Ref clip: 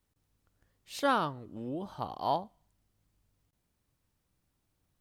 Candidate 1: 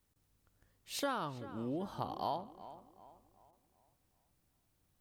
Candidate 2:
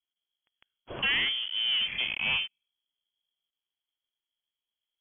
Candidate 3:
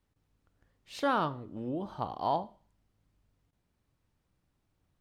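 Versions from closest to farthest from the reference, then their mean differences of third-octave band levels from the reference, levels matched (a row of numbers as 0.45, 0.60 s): 3, 1, 2; 2.5, 6.0, 15.5 dB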